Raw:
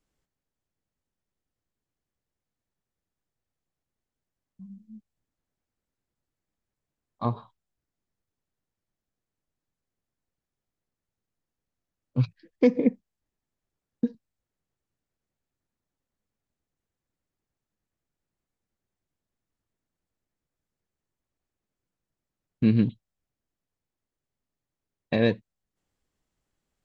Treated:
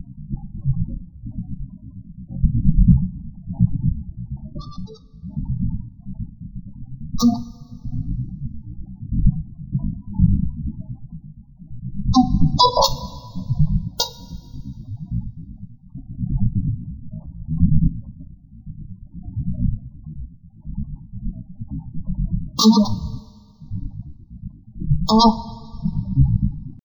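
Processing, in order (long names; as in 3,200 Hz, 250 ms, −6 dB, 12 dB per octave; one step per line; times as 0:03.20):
each half-wave held at its own peak
wind on the microphone 110 Hz −36 dBFS
two-band tremolo in antiphase 8.5 Hz, depth 100%, crossover 470 Hz
dynamic equaliser 270 Hz, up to −5 dB, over −43 dBFS, Q 0.89
pitch shifter +12 semitones
elliptic band-stop filter 1,300–2,900 Hz
phaser with its sweep stopped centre 2,000 Hz, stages 8
gate on every frequency bin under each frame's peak −15 dB strong
coupled-rooms reverb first 0.22 s, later 1.8 s, from −18 dB, DRR 9 dB
boost into a limiter +22 dB
level −2 dB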